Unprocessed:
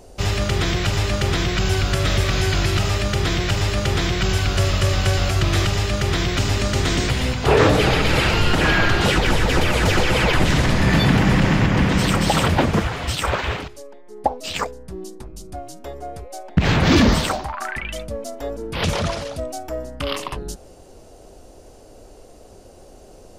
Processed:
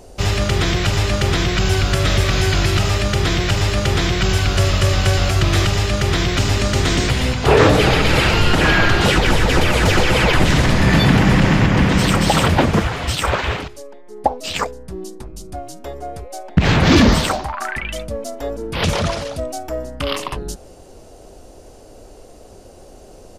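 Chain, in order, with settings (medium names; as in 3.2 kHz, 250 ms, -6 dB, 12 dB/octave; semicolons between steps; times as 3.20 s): resampled via 32 kHz; trim +3 dB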